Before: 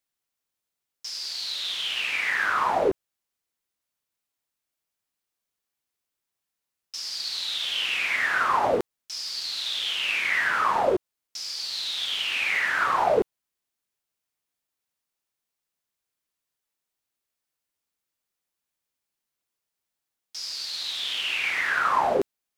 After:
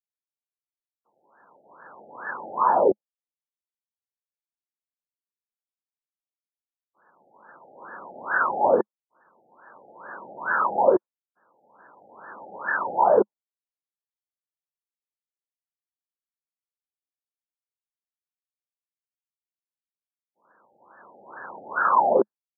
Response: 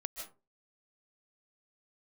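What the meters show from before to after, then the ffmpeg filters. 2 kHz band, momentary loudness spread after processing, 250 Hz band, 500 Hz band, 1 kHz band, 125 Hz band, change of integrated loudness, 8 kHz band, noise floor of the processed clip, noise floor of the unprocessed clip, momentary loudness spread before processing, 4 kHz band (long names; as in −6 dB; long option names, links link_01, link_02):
−6.0 dB, 21 LU, +2.5 dB, +4.0 dB, +2.0 dB, can't be measured, +2.5 dB, below −40 dB, below −85 dBFS, −85 dBFS, 11 LU, below −40 dB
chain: -af "agate=range=-33dB:threshold=-26dB:ratio=3:detection=peak,highpass=160,equalizer=frequency=210:width_type=q:width=4:gain=5,equalizer=frequency=360:width_type=q:width=4:gain=3,equalizer=frequency=540:width_type=q:width=4:gain=6,equalizer=frequency=930:width_type=q:width=4:gain=7,equalizer=frequency=1900:width_type=q:width=4:gain=8,lowpass=frequency=2300:width=0.5412,lowpass=frequency=2300:width=1.3066,afftfilt=real='re*lt(b*sr/1024,830*pow(1800/830,0.5+0.5*sin(2*PI*2.3*pts/sr)))':imag='im*lt(b*sr/1024,830*pow(1800/830,0.5+0.5*sin(2*PI*2.3*pts/sr)))':win_size=1024:overlap=0.75"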